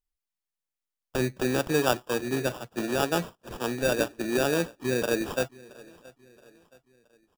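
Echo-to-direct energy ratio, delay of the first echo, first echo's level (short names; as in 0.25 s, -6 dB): -21.5 dB, 0.673 s, -22.5 dB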